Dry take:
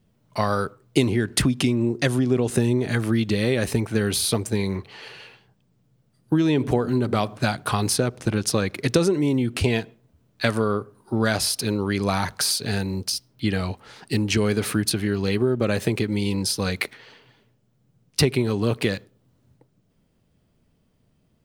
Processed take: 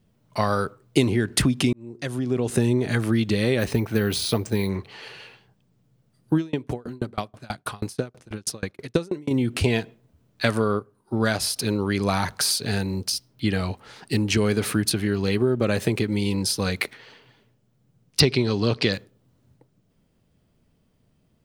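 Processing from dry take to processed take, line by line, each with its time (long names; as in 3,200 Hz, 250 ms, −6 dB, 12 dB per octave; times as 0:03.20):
0:01.73–0:02.63: fade in
0:03.59–0:04.69: bad sample-rate conversion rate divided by 3×, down filtered, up hold
0:06.37–0:09.31: tremolo with a ramp in dB decaying 6.2 Hz, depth 32 dB
0:10.79–0:11.56: expander for the loud parts, over −38 dBFS
0:18.20–0:18.93: low-pass with resonance 5,000 Hz, resonance Q 3.8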